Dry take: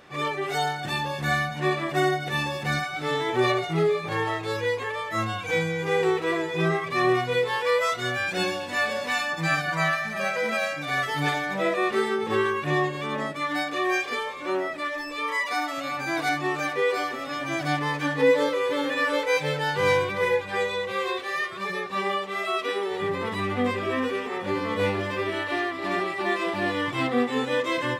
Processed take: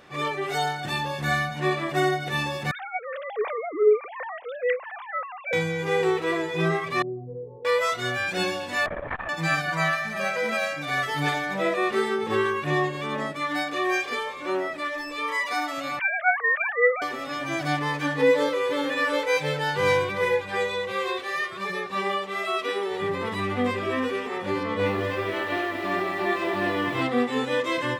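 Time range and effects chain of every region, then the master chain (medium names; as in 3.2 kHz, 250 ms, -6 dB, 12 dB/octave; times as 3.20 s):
2.71–5.53 s: formants replaced by sine waves + high-pass 190 Hz + treble shelf 2.3 kHz -10.5 dB
7.02–7.65 s: Gaussian low-pass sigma 19 samples + compression 1.5:1, threshold -40 dBFS
8.86–9.29 s: low-pass 1.9 kHz 24 dB/octave + LPC vocoder at 8 kHz whisper + transformer saturation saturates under 360 Hz
15.99–17.02 s: formants replaced by sine waves + peaking EQ 1.7 kHz +10 dB 0.57 oct
24.63–27.02 s: low-pass 3.9 kHz 6 dB/octave + bit-crushed delay 229 ms, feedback 55%, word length 8-bit, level -7 dB
whole clip: none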